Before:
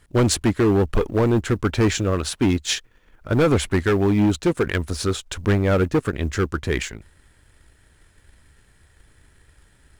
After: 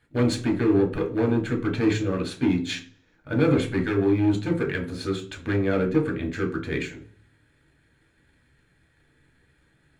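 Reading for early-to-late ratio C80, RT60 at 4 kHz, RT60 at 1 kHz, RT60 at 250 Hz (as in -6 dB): 16.5 dB, 0.55 s, 0.40 s, 0.70 s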